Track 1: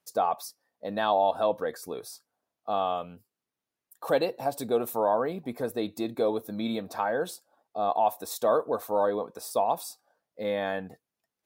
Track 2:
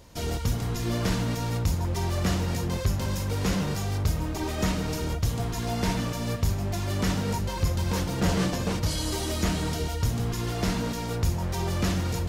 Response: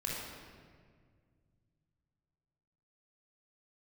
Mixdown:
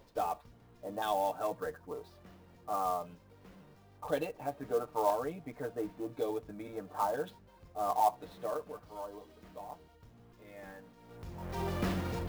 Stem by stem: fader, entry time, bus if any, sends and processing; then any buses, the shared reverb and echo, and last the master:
8.27 s -10 dB -> 8.85 s -22.5 dB, 0.00 s, no send, comb 6.7 ms, depth 91%; LFO low-pass saw down 0.98 Hz 930–3800 Hz
-2.0 dB, 0.00 s, no send, bell 71 Hz -9.5 dB 2.5 oct; auto duck -23 dB, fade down 0.35 s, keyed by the first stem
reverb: off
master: tape spacing loss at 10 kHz 20 dB; clock jitter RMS 0.02 ms

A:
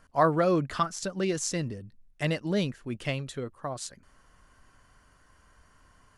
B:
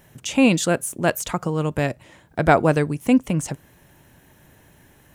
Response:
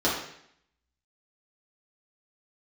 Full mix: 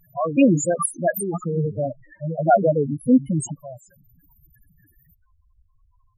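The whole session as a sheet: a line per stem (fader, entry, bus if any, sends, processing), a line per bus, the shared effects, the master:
+2.5 dB, 0.00 s, no send, bell 3200 Hz -7.5 dB 1.2 oct
0.0 dB, 0.00 s, no send, EQ curve 150 Hz 0 dB, 4500 Hz +9 dB, 12000 Hz +15 dB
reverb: off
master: high shelf 10000 Hz -4 dB; loudest bins only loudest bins 4; record warp 78 rpm, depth 100 cents

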